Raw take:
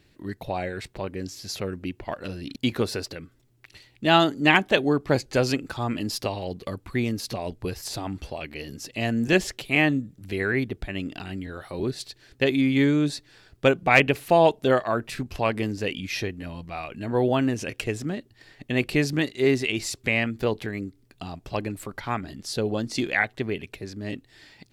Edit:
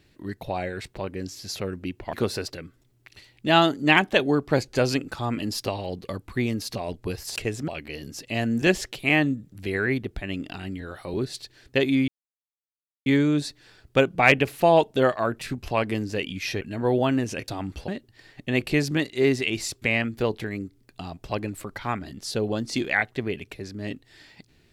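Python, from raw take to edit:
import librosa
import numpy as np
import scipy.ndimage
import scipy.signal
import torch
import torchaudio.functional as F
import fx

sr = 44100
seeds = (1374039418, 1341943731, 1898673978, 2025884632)

y = fx.edit(x, sr, fx.cut(start_s=2.13, length_s=0.58),
    fx.swap(start_s=7.94, length_s=0.4, other_s=17.78, other_length_s=0.32),
    fx.insert_silence(at_s=12.74, length_s=0.98),
    fx.cut(start_s=16.29, length_s=0.62), tone=tone)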